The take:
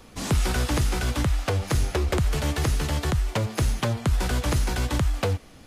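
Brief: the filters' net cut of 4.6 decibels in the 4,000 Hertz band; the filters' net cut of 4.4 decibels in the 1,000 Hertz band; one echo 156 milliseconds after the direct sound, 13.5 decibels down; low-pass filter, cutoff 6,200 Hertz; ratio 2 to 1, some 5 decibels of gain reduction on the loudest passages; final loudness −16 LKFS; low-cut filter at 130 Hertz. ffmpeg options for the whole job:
ffmpeg -i in.wav -af "highpass=130,lowpass=6200,equalizer=frequency=1000:width_type=o:gain=-5.5,equalizer=frequency=4000:width_type=o:gain=-5,acompressor=threshold=-32dB:ratio=2,aecho=1:1:156:0.211,volume=18dB" out.wav

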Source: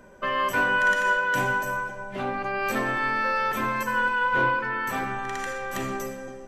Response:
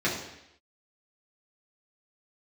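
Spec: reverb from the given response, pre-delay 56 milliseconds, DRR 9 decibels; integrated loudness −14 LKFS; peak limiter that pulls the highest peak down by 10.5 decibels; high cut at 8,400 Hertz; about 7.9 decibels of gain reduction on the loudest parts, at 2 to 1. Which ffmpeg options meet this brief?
-filter_complex "[0:a]lowpass=8400,acompressor=threshold=-33dB:ratio=2,alimiter=level_in=6.5dB:limit=-24dB:level=0:latency=1,volume=-6.5dB,asplit=2[link_01][link_02];[1:a]atrim=start_sample=2205,adelay=56[link_03];[link_02][link_03]afir=irnorm=-1:irlink=0,volume=-21dB[link_04];[link_01][link_04]amix=inputs=2:normalize=0,volume=23.5dB"

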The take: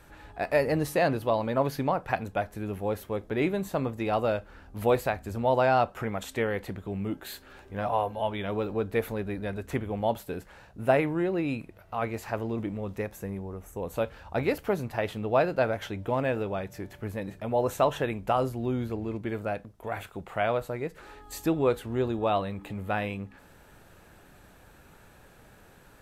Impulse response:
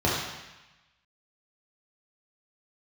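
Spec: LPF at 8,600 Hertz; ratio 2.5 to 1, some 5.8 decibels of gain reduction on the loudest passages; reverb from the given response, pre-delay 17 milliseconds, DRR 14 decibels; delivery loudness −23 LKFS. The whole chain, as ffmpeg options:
-filter_complex "[0:a]lowpass=8600,acompressor=threshold=-27dB:ratio=2.5,asplit=2[link_01][link_02];[1:a]atrim=start_sample=2205,adelay=17[link_03];[link_02][link_03]afir=irnorm=-1:irlink=0,volume=-29dB[link_04];[link_01][link_04]amix=inputs=2:normalize=0,volume=9.5dB"

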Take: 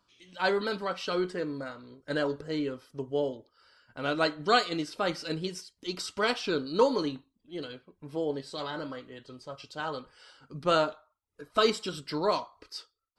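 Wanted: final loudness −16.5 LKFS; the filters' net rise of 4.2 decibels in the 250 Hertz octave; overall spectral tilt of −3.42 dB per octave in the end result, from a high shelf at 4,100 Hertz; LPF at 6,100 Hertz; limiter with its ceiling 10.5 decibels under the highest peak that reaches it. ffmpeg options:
ffmpeg -i in.wav -af "lowpass=6100,equalizer=frequency=250:width_type=o:gain=5.5,highshelf=frequency=4100:gain=6.5,volume=15.5dB,alimiter=limit=-4dB:level=0:latency=1" out.wav

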